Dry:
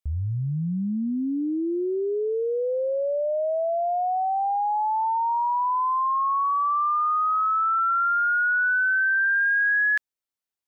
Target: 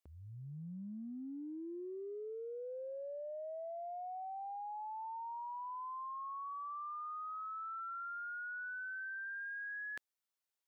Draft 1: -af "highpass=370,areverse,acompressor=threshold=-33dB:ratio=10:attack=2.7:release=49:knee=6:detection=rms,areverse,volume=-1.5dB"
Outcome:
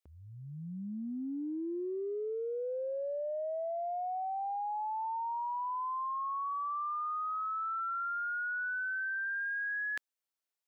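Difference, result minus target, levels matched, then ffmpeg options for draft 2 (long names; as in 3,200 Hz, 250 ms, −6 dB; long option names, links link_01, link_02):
downward compressor: peak gain reduction −8 dB
-af "highpass=370,areverse,acompressor=threshold=-42dB:ratio=10:attack=2.7:release=49:knee=6:detection=rms,areverse,volume=-1.5dB"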